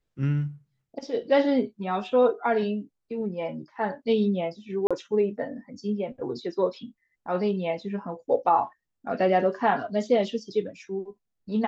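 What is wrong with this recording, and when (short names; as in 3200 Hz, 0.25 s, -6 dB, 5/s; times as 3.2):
4.87–4.91 gap 36 ms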